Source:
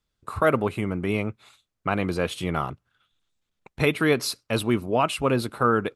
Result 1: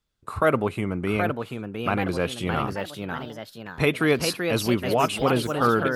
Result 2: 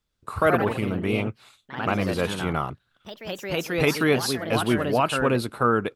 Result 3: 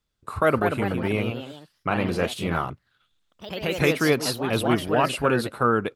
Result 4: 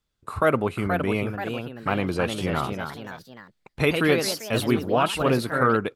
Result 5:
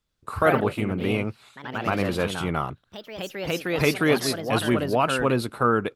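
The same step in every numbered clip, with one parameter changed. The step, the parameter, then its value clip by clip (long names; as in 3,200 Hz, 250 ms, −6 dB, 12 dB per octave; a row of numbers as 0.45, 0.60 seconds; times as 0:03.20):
delay with pitch and tempo change per echo, delay time: 821, 125, 243, 523, 82 milliseconds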